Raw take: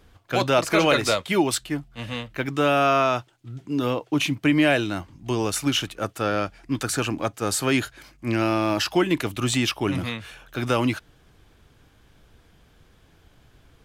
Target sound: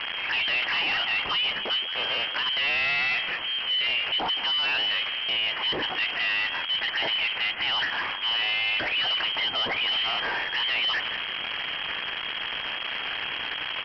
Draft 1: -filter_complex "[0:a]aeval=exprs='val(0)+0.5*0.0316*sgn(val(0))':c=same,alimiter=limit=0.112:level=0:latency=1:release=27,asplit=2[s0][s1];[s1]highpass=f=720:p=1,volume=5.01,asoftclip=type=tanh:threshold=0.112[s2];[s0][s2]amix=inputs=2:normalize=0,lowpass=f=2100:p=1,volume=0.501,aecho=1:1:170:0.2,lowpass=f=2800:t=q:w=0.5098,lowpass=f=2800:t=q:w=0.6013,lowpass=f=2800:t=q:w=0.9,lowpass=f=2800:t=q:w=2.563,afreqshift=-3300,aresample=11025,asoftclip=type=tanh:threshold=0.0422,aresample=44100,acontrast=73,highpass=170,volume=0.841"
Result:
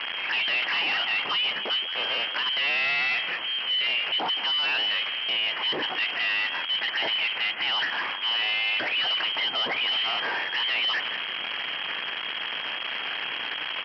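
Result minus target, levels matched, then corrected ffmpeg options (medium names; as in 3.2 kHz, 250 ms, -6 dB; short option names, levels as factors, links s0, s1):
125 Hz band -5.5 dB
-filter_complex "[0:a]aeval=exprs='val(0)+0.5*0.0316*sgn(val(0))':c=same,alimiter=limit=0.112:level=0:latency=1:release=27,asplit=2[s0][s1];[s1]highpass=f=720:p=1,volume=5.01,asoftclip=type=tanh:threshold=0.112[s2];[s0][s2]amix=inputs=2:normalize=0,lowpass=f=2100:p=1,volume=0.501,aecho=1:1:170:0.2,lowpass=f=2800:t=q:w=0.5098,lowpass=f=2800:t=q:w=0.6013,lowpass=f=2800:t=q:w=0.9,lowpass=f=2800:t=q:w=2.563,afreqshift=-3300,aresample=11025,asoftclip=type=tanh:threshold=0.0422,aresample=44100,acontrast=73,volume=0.841"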